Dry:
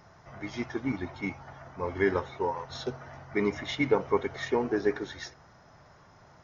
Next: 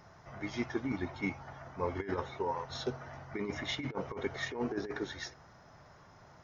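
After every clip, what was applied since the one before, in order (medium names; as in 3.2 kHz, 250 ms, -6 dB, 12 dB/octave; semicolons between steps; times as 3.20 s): compressor with a negative ratio -29 dBFS, ratio -0.5; trim -4 dB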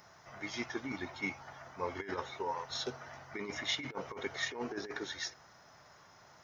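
tilt EQ +2.5 dB/octave; trim -1 dB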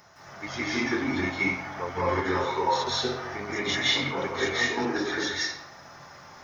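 reverberation RT60 0.75 s, pre-delay 159 ms, DRR -8.5 dB; trim +3.5 dB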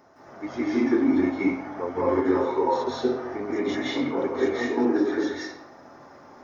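FFT filter 170 Hz 0 dB, 260 Hz +15 dB, 3.1 kHz -6 dB; trim -5 dB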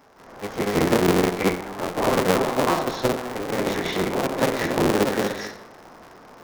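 cycle switcher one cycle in 3, inverted; trim +2 dB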